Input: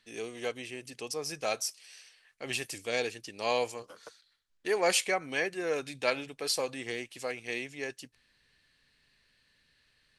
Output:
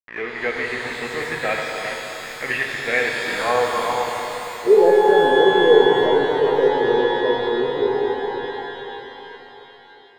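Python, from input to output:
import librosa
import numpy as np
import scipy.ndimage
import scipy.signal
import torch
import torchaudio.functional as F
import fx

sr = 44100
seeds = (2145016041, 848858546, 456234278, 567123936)

y = x + 0.5 * 10.0 ** (-33.5 / 20.0) * np.sign(x)
y = scipy.signal.sosfilt(scipy.signal.butter(2, 5100.0, 'lowpass', fs=sr, output='sos'), y)
y = fx.echo_alternate(y, sr, ms=394, hz=1100.0, feedback_pct=61, wet_db=-7.5)
y = np.where(np.abs(y) >= 10.0 ** (-33.5 / 20.0), y, 0.0)
y = fx.filter_sweep_lowpass(y, sr, from_hz=1900.0, to_hz=430.0, start_s=3.19, end_s=4.75, q=6.1)
y = fx.rev_shimmer(y, sr, seeds[0], rt60_s=3.9, semitones=12, shimmer_db=-8, drr_db=0.5)
y = y * librosa.db_to_amplitude(3.5)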